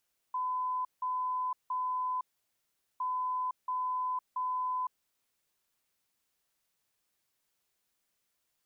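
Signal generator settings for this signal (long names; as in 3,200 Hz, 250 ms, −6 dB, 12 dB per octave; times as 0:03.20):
beeps in groups sine 1,010 Hz, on 0.51 s, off 0.17 s, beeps 3, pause 0.79 s, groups 2, −30 dBFS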